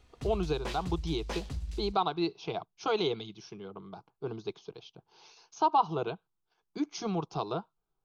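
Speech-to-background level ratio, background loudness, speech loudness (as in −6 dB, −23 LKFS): 7.5 dB, −40.5 LKFS, −33.0 LKFS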